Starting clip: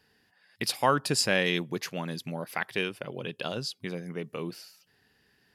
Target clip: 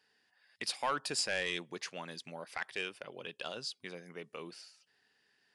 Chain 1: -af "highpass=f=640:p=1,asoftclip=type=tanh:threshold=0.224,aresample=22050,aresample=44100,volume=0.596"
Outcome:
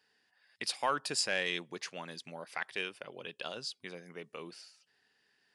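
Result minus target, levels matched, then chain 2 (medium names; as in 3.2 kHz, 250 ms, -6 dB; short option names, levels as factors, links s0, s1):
saturation: distortion -10 dB
-af "highpass=f=640:p=1,asoftclip=type=tanh:threshold=0.0944,aresample=22050,aresample=44100,volume=0.596"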